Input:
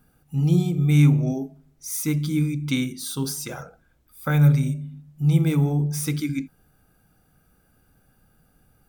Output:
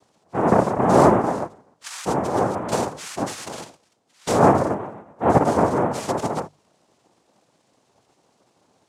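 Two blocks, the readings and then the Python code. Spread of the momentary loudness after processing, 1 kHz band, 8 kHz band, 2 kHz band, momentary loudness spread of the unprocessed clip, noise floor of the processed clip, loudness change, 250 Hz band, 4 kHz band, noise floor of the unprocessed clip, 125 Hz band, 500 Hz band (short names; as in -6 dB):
17 LU, +21.0 dB, -1.5 dB, +3.0 dB, 15 LU, -65 dBFS, +1.5 dB, 0.0 dB, -1.0 dB, -63 dBFS, -8.5 dB, +14.5 dB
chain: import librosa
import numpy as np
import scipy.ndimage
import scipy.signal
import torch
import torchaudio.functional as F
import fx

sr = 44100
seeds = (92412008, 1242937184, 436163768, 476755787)

y = fx.noise_vocoder(x, sr, seeds[0], bands=2)
y = fx.dynamic_eq(y, sr, hz=3700.0, q=0.89, threshold_db=-40.0, ratio=4.0, max_db=-5)
y = fx.hum_notches(y, sr, base_hz=50, count=3)
y = F.gain(torch.from_numpy(y), 1.5).numpy()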